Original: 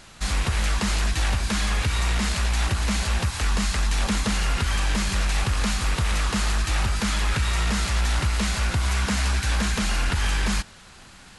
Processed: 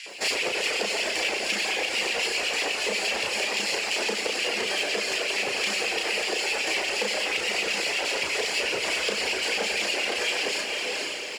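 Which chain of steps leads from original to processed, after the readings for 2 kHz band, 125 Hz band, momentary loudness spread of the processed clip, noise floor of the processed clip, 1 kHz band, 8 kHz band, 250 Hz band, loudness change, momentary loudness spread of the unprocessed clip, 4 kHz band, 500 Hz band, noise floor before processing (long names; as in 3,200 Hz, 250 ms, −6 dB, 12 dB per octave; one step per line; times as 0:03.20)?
+3.5 dB, below −25 dB, 1 LU, −31 dBFS, −3.0 dB, −1.0 dB, −10.0 dB, −1.0 dB, 1 LU, +3.5 dB, +7.5 dB, −47 dBFS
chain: lower of the sound and its delayed copy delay 0.41 ms
spectral tilt −2 dB per octave
auto-filter high-pass square 8.2 Hz 440–2,600 Hz
low-pass filter 7,900 Hz 12 dB per octave
on a send: feedback delay with all-pass diffusion 483 ms, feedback 48%, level −8 dB
on the sum: downward compressor, threshold −32 dBFS, peak gain reduction 10 dB
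double-tracking delay 34 ms −3 dB
in parallel at −4 dB: soft clipping −35 dBFS, distortion −10 dB
on the sum: bass and treble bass −15 dB, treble +4 dB
reverb reduction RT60 1.1 s
feedback echo at a low word length 93 ms, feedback 80%, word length 10 bits, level −10 dB
level +5.5 dB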